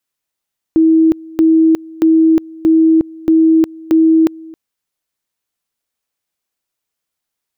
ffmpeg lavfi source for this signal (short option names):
-f lavfi -i "aevalsrc='pow(10,(-6-23.5*gte(mod(t,0.63),0.36))/20)*sin(2*PI*322*t)':d=3.78:s=44100"